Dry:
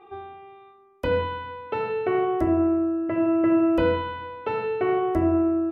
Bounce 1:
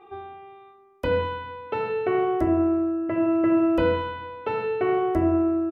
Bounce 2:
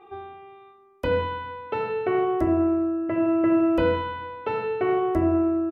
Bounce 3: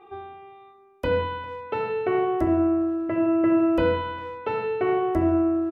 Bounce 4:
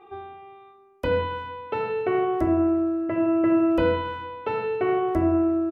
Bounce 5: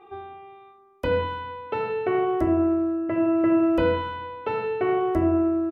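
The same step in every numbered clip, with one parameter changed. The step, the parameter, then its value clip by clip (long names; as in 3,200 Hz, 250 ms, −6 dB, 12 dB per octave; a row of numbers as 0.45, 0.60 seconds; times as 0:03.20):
far-end echo of a speakerphone, delay time: 130, 90, 400, 270, 190 milliseconds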